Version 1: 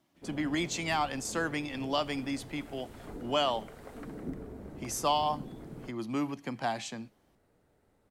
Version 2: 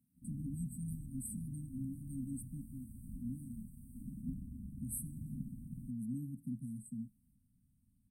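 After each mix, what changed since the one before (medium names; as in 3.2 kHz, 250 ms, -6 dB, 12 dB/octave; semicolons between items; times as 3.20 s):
master: add brick-wall FIR band-stop 270–8000 Hz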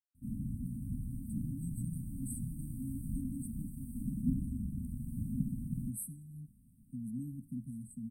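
speech: entry +1.05 s; background +9.0 dB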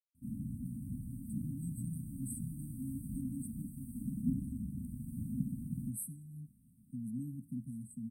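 background: add high-pass 110 Hz 6 dB/octave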